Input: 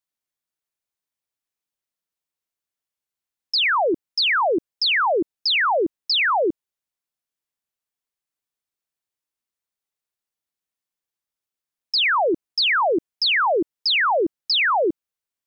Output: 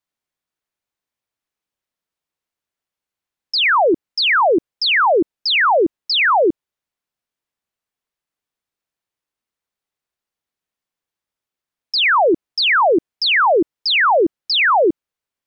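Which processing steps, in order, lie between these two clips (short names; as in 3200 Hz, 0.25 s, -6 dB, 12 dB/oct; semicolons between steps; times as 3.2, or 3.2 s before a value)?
high shelf 4800 Hz -9 dB; gain +6 dB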